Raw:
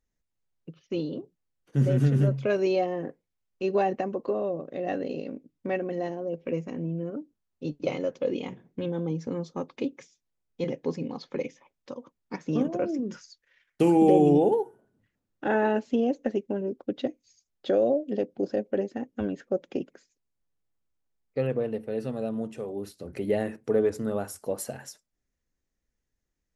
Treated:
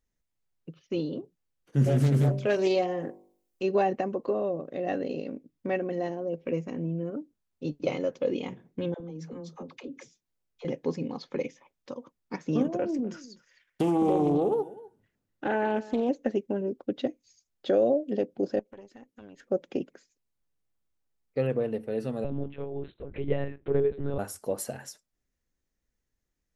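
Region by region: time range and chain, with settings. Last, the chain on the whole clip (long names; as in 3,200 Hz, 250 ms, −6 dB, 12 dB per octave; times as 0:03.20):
0:01.84–0:03.63: high-shelf EQ 6,200 Hz +11.5 dB + hum removal 49.24 Hz, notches 22 + highs frequency-modulated by the lows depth 0.37 ms
0:08.94–0:10.65: downward compressor 10 to 1, threshold −35 dBFS + all-pass dispersion lows, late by 63 ms, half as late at 440 Hz
0:12.79–0:16.09: downward compressor 2 to 1, threshold −24 dBFS + single-tap delay 251 ms −19 dB + highs frequency-modulated by the lows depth 0.23 ms
0:18.59–0:19.43: tilt shelving filter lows −5 dB, about 1,100 Hz + downward compressor 3 to 1, threshold −43 dBFS + tube saturation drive 31 dB, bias 0.8
0:22.24–0:24.19: dynamic equaliser 1,000 Hz, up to −6 dB, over −41 dBFS, Q 1.1 + one-pitch LPC vocoder at 8 kHz 140 Hz
whole clip: no processing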